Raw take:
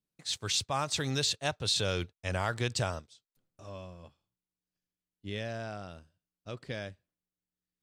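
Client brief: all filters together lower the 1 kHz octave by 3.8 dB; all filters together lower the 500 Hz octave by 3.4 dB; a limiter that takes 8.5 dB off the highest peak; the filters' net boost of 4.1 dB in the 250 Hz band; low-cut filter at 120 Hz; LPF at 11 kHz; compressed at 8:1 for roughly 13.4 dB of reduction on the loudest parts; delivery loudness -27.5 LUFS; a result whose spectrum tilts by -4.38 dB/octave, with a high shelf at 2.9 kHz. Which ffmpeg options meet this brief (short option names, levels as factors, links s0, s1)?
-af "highpass=120,lowpass=11000,equalizer=f=250:t=o:g=7.5,equalizer=f=500:t=o:g=-5,equalizer=f=1000:t=o:g=-3,highshelf=f=2900:g=-6.5,acompressor=threshold=0.00891:ratio=8,volume=14.1,alimiter=limit=0.158:level=0:latency=1"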